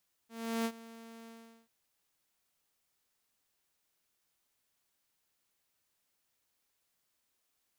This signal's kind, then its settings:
note with an ADSR envelope saw 228 Hz, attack 360 ms, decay 65 ms, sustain −19 dB, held 0.99 s, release 400 ms −27.5 dBFS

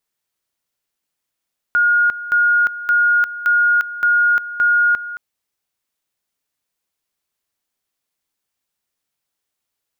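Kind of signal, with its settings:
tone at two levels in turn 1,430 Hz −11 dBFS, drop 14.5 dB, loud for 0.35 s, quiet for 0.22 s, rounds 6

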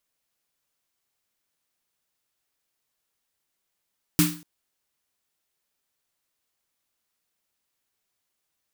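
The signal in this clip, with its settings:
synth snare length 0.24 s, tones 170 Hz, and 300 Hz, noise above 990 Hz, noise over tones −3 dB, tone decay 0.39 s, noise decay 0.38 s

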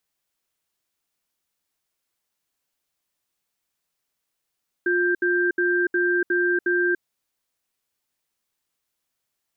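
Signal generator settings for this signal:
tone pair in a cadence 354 Hz, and 1,580 Hz, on 0.29 s, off 0.07 s, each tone −21 dBFS 2.12 s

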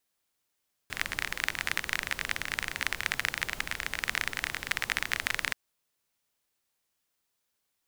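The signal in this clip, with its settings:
rain-like ticks over hiss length 4.63 s, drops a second 27, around 1,900 Hz, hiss −10.5 dB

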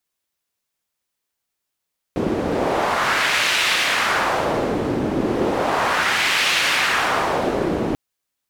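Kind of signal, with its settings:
wind from filtered noise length 5.79 s, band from 300 Hz, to 2,600 Hz, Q 1.3, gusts 2, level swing 3 dB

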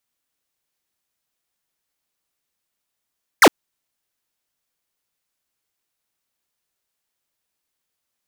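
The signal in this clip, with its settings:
single falling chirp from 2,300 Hz, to 230 Hz, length 0.06 s square, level −8 dB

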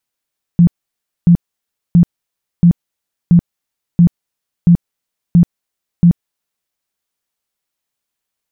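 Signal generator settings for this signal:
tone bursts 172 Hz, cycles 14, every 0.68 s, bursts 9, −3.5 dBFS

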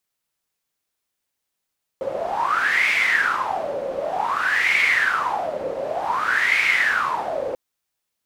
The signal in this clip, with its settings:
wind from filtered noise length 5.54 s, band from 530 Hz, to 2,200 Hz, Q 11, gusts 3, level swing 8 dB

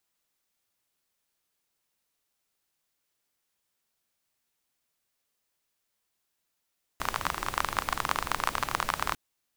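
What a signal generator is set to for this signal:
rain-like ticks over hiss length 2.15 s, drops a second 27, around 1,100 Hz, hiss −7.5 dB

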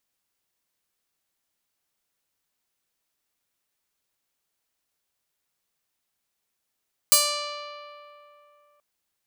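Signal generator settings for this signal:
Karplus-Strong string D5, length 1.68 s, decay 2.94 s, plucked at 0.32, bright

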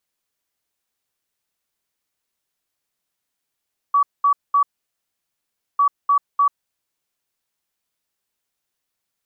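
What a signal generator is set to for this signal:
beeps in groups sine 1,140 Hz, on 0.09 s, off 0.21 s, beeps 3, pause 1.16 s, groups 2, −12 dBFS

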